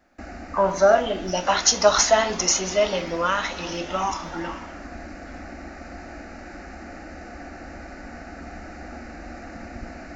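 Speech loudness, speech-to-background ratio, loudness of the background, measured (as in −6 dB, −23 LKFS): −21.0 LKFS, 18.0 dB, −39.0 LKFS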